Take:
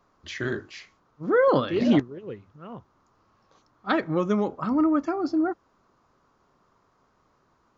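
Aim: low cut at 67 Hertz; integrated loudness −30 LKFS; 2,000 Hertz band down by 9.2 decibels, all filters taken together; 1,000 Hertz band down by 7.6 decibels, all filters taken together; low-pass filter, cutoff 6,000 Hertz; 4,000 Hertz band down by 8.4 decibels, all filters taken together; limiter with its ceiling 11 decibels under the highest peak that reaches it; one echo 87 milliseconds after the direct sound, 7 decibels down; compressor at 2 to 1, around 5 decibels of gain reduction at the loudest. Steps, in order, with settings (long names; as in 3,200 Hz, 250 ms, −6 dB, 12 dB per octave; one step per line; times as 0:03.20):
high-pass filter 67 Hz
low-pass filter 6,000 Hz
parametric band 1,000 Hz −7 dB
parametric band 2,000 Hz −8.5 dB
parametric band 4,000 Hz −6.5 dB
downward compressor 2 to 1, threshold −25 dBFS
brickwall limiter −27 dBFS
single-tap delay 87 ms −7 dB
level +5 dB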